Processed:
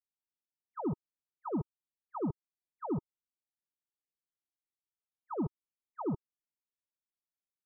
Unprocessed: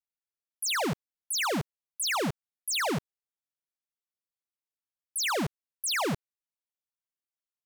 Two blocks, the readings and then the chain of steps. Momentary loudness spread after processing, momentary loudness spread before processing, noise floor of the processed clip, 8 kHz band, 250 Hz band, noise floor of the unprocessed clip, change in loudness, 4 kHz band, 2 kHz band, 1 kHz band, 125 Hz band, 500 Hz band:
10 LU, 8 LU, below −85 dBFS, below −40 dB, −2.0 dB, below −85 dBFS, −9.0 dB, below −40 dB, below −40 dB, −10.0 dB, −3.5 dB, −6.5 dB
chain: Chebyshev low-pass with heavy ripple 1,300 Hz, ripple 9 dB
low-shelf EQ 380 Hz +12 dB
level −7 dB

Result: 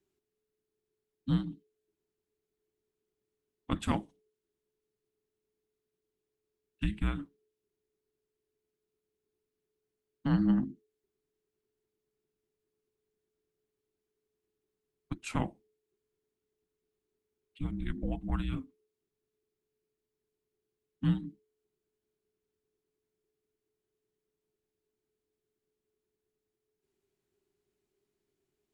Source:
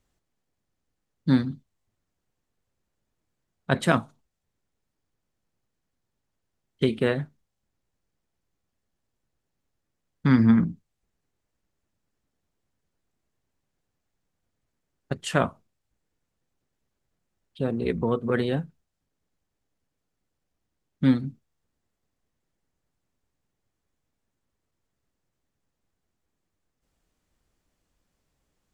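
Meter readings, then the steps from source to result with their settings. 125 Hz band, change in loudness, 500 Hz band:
−7.0 dB, −9.0 dB, −18.0 dB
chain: graphic EQ with 15 bands 160 Hz −5 dB, 1,600 Hz −4 dB, 6,300 Hz −4 dB
frequency shifter −430 Hz
level −7 dB

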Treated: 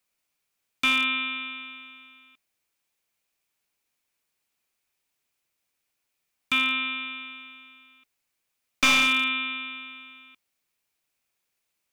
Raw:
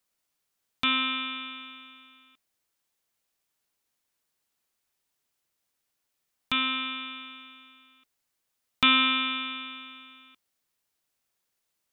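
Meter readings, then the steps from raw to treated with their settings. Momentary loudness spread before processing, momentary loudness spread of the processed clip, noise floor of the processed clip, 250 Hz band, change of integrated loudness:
21 LU, 21 LU, −80 dBFS, −1.0 dB, +2.0 dB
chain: wavefolder on the positive side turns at −20 dBFS
parametric band 2,400 Hz +7 dB 0.34 octaves

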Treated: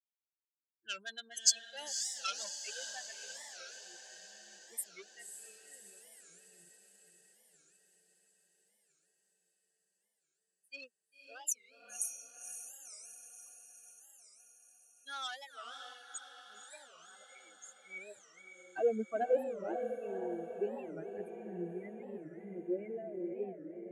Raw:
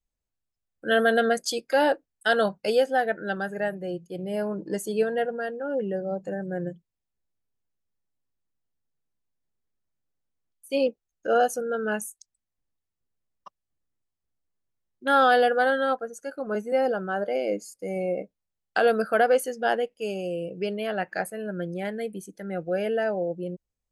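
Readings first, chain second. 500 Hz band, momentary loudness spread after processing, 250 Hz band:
−15.5 dB, 21 LU, −15.0 dB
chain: spectral dynamics exaggerated over time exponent 3
low-shelf EQ 140 Hz +10.5 dB
harmonic and percussive parts rebalanced percussive +9 dB
dynamic equaliser 110 Hz, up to −6 dB, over −47 dBFS, Q 0.86
soft clipping −16.5 dBFS, distortion −18 dB
band-pass filter sweep 6,800 Hz → 320 Hz, 0:17.67–0:18.48
feedback delay with all-pass diffusion 539 ms, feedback 64%, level −7 dB
wow of a warped record 45 rpm, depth 250 cents
level +4 dB

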